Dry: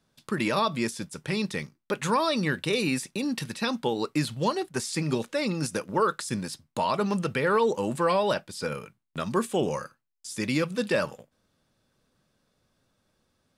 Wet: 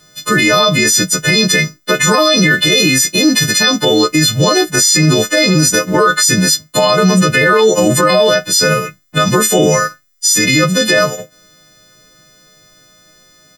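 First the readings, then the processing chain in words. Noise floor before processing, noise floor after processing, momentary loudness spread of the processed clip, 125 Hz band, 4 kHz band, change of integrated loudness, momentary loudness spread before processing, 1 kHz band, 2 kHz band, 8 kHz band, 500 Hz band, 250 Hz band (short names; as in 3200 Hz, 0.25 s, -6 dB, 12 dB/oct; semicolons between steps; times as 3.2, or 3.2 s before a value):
-74 dBFS, -48 dBFS, 4 LU, +17.0 dB, +22.5 dB, +17.5 dB, 10 LU, +12.5 dB, +20.0 dB, +27.0 dB, +15.0 dB, +15.0 dB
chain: frequency quantiser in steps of 3 st; comb 6.3 ms, depth 69%; maximiser +20 dB; gain -1 dB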